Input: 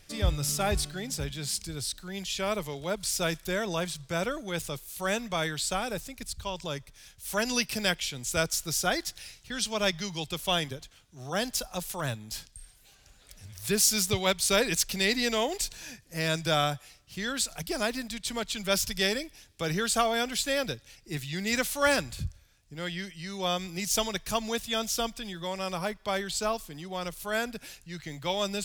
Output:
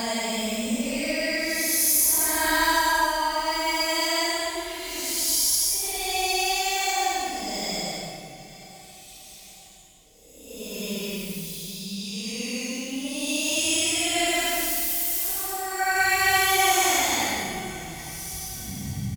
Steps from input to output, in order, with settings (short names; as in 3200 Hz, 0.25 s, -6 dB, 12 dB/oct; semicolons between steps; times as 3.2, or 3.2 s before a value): speed glide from 186% -> 113%; high shelf 4300 Hz +8.5 dB; Paulstretch 10×, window 0.10 s, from 12.04; feedback echo 0.866 s, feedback 44%, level -19 dB; spring tank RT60 2.7 s, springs 30/49 ms, chirp 35 ms, DRR 6.5 dB